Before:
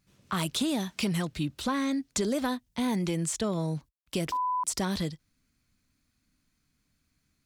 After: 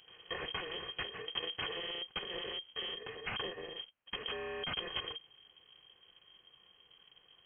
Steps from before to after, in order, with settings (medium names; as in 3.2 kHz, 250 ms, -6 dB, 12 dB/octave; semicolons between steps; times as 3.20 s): bit-reversed sample order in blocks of 256 samples; valve stage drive 46 dB, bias 0.6; frequency inversion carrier 3.2 kHz; trim +17.5 dB